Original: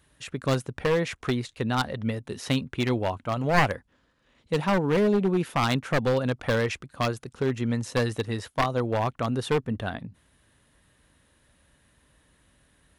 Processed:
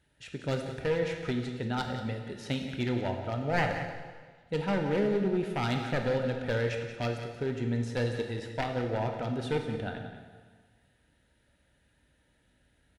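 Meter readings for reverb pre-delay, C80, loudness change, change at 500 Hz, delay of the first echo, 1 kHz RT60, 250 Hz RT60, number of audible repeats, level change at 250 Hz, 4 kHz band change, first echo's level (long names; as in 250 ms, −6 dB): 8 ms, 6.0 dB, −5.0 dB, −4.5 dB, 179 ms, 1.5 s, 1.6 s, 1, −5.0 dB, −6.5 dB, −11.0 dB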